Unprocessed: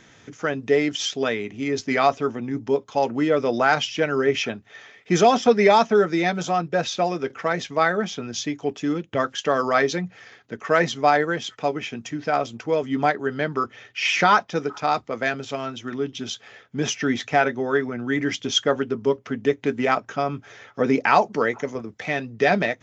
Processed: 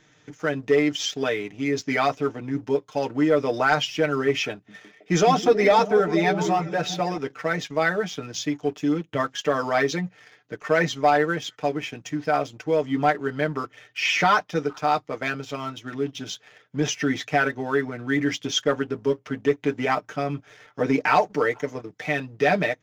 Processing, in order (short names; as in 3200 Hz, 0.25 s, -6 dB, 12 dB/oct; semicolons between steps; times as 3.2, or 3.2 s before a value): comb 6.6 ms, depth 68%; sample leveller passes 1; 4.52–7.18 delay with a stepping band-pass 0.161 s, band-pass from 190 Hz, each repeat 0.7 oct, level -4.5 dB; gain -6.5 dB